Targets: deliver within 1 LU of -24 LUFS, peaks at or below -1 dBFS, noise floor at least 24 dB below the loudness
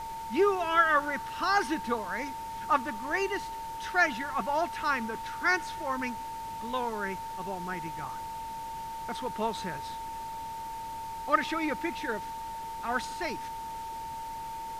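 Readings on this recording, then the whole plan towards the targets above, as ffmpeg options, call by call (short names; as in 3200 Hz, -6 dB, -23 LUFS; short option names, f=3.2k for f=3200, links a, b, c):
steady tone 900 Hz; tone level -36 dBFS; noise floor -39 dBFS; noise floor target -56 dBFS; loudness -31.5 LUFS; peak -11.0 dBFS; loudness target -24.0 LUFS
-> -af "bandreject=f=900:w=30"
-af "afftdn=nr=17:nf=-39"
-af "volume=7.5dB"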